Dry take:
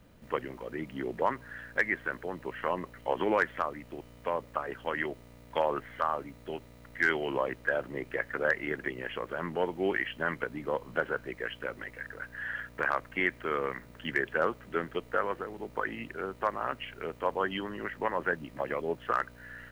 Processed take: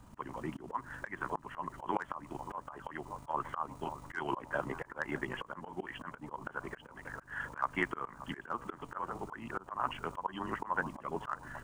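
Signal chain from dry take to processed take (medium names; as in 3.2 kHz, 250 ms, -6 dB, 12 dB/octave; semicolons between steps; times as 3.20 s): granular stretch 0.59×, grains 76 ms; ten-band graphic EQ 500 Hz -11 dB, 1 kHz +11 dB, 2 kHz -9 dB, 4 kHz -5 dB, 8 kHz +9 dB, 16 kHz -9 dB; on a send: bucket-brigade echo 581 ms, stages 4096, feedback 48%, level -18 dB; on the sum: slow attack 226 ms; trim +4 dB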